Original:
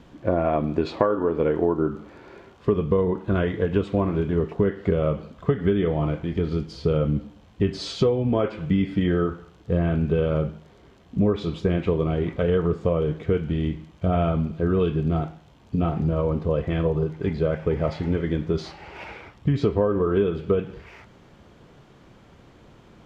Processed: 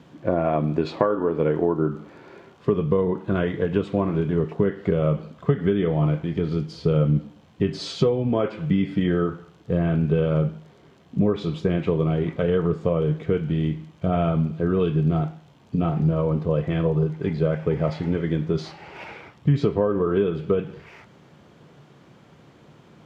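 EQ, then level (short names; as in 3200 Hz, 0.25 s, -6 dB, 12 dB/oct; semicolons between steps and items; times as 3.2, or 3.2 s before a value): HPF 110 Hz 12 dB/oct; bell 150 Hz +6.5 dB 0.26 oct; 0.0 dB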